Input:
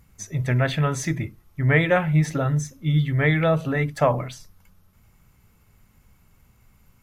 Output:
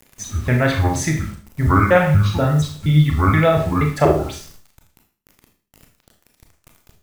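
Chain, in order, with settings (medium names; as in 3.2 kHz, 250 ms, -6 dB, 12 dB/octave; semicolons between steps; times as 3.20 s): pitch shift switched off and on -8 st, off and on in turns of 238 ms; word length cut 8-bit, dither none; Schroeder reverb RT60 0.44 s, combs from 26 ms, DRR 2.5 dB; trim +4.5 dB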